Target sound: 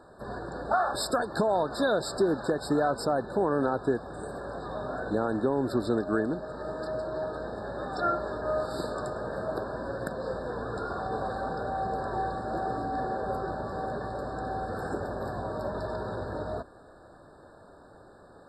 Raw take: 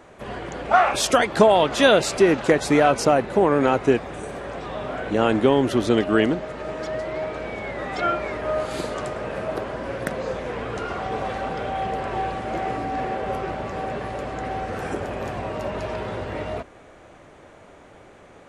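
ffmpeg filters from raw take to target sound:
ffmpeg -i in.wav -af "alimiter=limit=-11dB:level=0:latency=1:release=324,afftfilt=real='re*eq(mod(floor(b*sr/1024/1800),2),0)':imag='im*eq(mod(floor(b*sr/1024/1800),2),0)':win_size=1024:overlap=0.75,volume=-4.5dB" out.wav

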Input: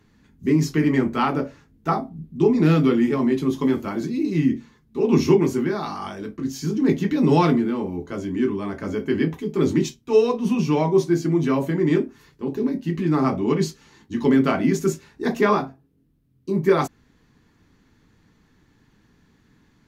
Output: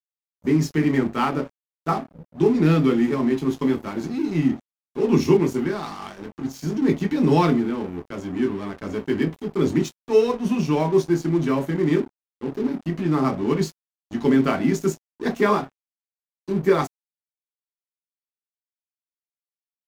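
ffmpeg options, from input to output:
ffmpeg -i in.wav -af "aeval=exprs='sgn(val(0))*max(abs(val(0))-0.0141,0)':channel_layout=same" out.wav

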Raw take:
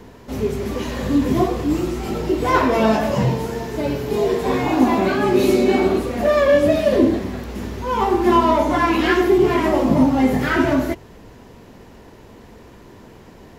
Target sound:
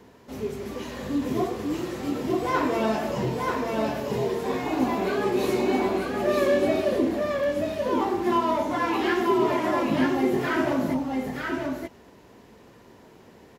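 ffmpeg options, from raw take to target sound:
ffmpeg -i in.wav -af "highpass=frequency=150:poles=1,aecho=1:1:933:0.708,volume=-8dB" out.wav

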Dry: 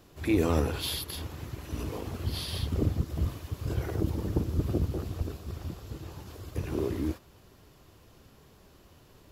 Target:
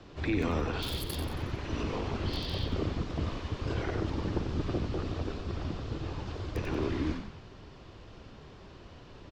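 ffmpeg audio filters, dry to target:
ffmpeg -i in.wav -filter_complex "[0:a]acrossover=split=230|790[link_01][link_02][link_03];[link_01]acompressor=threshold=-40dB:ratio=4[link_04];[link_02]acompressor=threshold=-42dB:ratio=4[link_05];[link_03]acompressor=threshold=-43dB:ratio=4[link_06];[link_04][link_05][link_06]amix=inputs=3:normalize=0,acrossover=split=460|5500[link_07][link_08][link_09];[link_09]acrusher=bits=6:mix=0:aa=0.000001[link_10];[link_07][link_08][link_10]amix=inputs=3:normalize=0,asplit=6[link_11][link_12][link_13][link_14][link_15][link_16];[link_12]adelay=91,afreqshift=-53,volume=-7dB[link_17];[link_13]adelay=182,afreqshift=-106,volume=-13.7dB[link_18];[link_14]adelay=273,afreqshift=-159,volume=-20.5dB[link_19];[link_15]adelay=364,afreqshift=-212,volume=-27.2dB[link_20];[link_16]adelay=455,afreqshift=-265,volume=-34dB[link_21];[link_11][link_17][link_18][link_19][link_20][link_21]amix=inputs=6:normalize=0,volume=6dB" out.wav

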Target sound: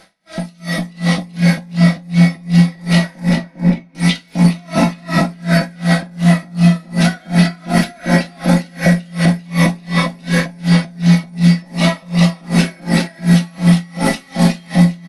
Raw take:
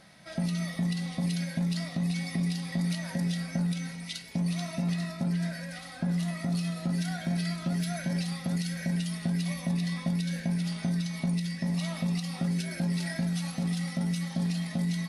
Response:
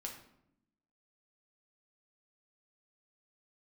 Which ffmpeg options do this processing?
-filter_complex "[0:a]asettb=1/sr,asplit=3[link_01][link_02][link_03];[link_01]atrim=end=3.294[link_04];[link_02]atrim=start=3.29:end=3.95,asetpts=PTS-STARTPTS,afade=type=in:duration=0.004:curve=qsin,afade=type=out:start_time=0.656:duration=0.004:curve=qsin,asplit=3[link_05][link_06][link_07];[link_05]bandpass=frequency=300:width_type=q:width=8,volume=0dB[link_08];[link_06]bandpass=frequency=870:width_type=q:width=8,volume=-6dB[link_09];[link_07]bandpass=frequency=2240:width_type=q:width=8,volume=-9dB[link_10];[link_08][link_09][link_10]amix=inputs=3:normalize=0[link_11];[link_03]atrim=start=3.946[link_12];[link_04][link_11]acrossfade=duration=0.004:curve1=hsin:curve2=qsin[link_13];[link_13][link_12]acrossfade=duration=0.004:curve1=qsin:curve2=hsin,asettb=1/sr,asplit=3[link_14][link_15][link_16];[link_14]atrim=end=13.144[link_17];[link_15]atrim=start=13.14:end=14.78,asetpts=PTS-STARTPTS,afade=type=in:duration=0.004:curve=qsin,afade=type=out:start_time=1.636:duration=0.004:curve=qsin,highshelf=frequency=3200:gain=9[link_18];[link_16]atrim=start=14.776[link_19];[link_17][link_18]acrossfade=duration=0.004:curve1=hsin:curve2=qsin[link_20];[link_20][link_19]acrossfade=duration=0.004:curve1=qsin:curve2=hsin,asplit=2[link_21][link_22];[link_22]adelay=402,lowpass=frequency=950:poles=1,volume=-3dB,asplit=2[link_23][link_24];[link_24]adelay=402,lowpass=frequency=950:poles=1,volume=0.37,asplit=2[link_25][link_26];[link_26]adelay=402,lowpass=frequency=950:poles=1,volume=0.37,asplit=2[link_27][link_28];[link_28]adelay=402,lowpass=frequency=950:poles=1,volume=0.37,asplit=2[link_29][link_30];[link_30]adelay=402,lowpass=frequency=950:poles=1,volume=0.37[link_31];[link_21][link_23][link_25][link_27][link_29][link_31]amix=inputs=6:normalize=0,dynaudnorm=framelen=150:gausssize=11:maxgain=15dB,equalizer=frequency=120:width=1.1:gain=-11.5[link_32];[1:a]atrim=start_sample=2205[link_33];[link_32][link_33]afir=irnorm=-1:irlink=0,acrossover=split=2900[link_34][link_35];[link_35]acompressor=threshold=-39dB:ratio=4:attack=1:release=60[link_36];[link_34][link_36]amix=inputs=2:normalize=0,alimiter=level_in=16.5dB:limit=-1dB:release=50:level=0:latency=1,aeval=exprs='val(0)*pow(10,-31*(0.5-0.5*cos(2*PI*2.7*n/s))/20)':channel_layout=same"

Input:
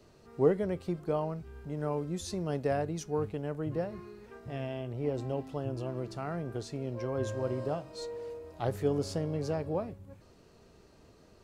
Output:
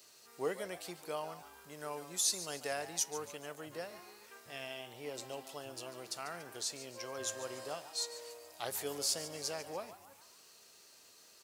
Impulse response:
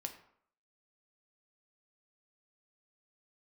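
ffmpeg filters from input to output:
-filter_complex "[0:a]aderivative,asplit=2[link_01][link_02];[link_02]asplit=5[link_03][link_04][link_05][link_06][link_07];[link_03]adelay=143,afreqshift=120,volume=-13.5dB[link_08];[link_04]adelay=286,afreqshift=240,volume=-20.1dB[link_09];[link_05]adelay=429,afreqshift=360,volume=-26.6dB[link_10];[link_06]adelay=572,afreqshift=480,volume=-33.2dB[link_11];[link_07]adelay=715,afreqshift=600,volume=-39.7dB[link_12];[link_08][link_09][link_10][link_11][link_12]amix=inputs=5:normalize=0[link_13];[link_01][link_13]amix=inputs=2:normalize=0,volume=13dB"

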